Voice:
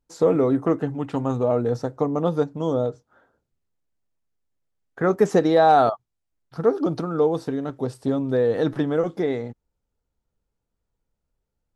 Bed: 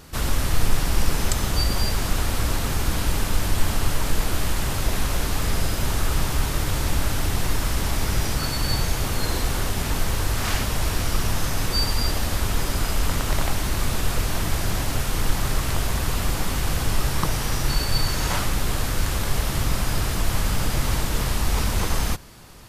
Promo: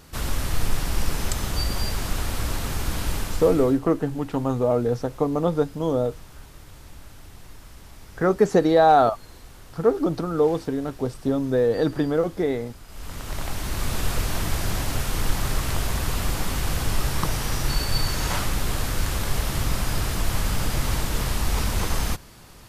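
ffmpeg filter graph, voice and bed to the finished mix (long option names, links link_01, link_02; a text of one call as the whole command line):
ffmpeg -i stem1.wav -i stem2.wav -filter_complex "[0:a]adelay=3200,volume=0dB[link_01];[1:a]volume=16.5dB,afade=type=out:start_time=3.14:duration=0.66:silence=0.125893,afade=type=in:start_time=12.87:duration=1.16:silence=0.1[link_02];[link_01][link_02]amix=inputs=2:normalize=0" out.wav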